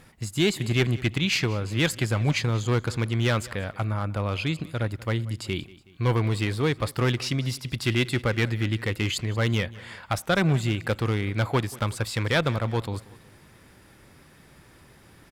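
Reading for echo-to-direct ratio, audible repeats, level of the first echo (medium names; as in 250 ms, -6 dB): -19.5 dB, 2, -20.5 dB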